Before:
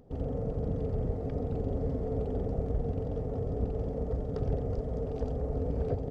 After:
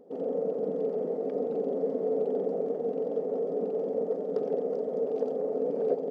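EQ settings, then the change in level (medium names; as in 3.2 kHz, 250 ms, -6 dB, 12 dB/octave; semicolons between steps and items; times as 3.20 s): brick-wall FIR high-pass 170 Hz; peaking EQ 480 Hz +11.5 dB 1.3 oct; -3.0 dB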